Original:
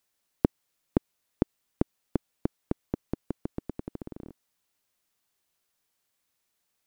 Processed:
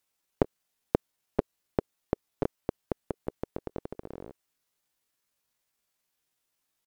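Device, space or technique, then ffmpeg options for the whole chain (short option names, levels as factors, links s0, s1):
chipmunk voice: -af "asetrate=64194,aresample=44100,atempo=0.686977"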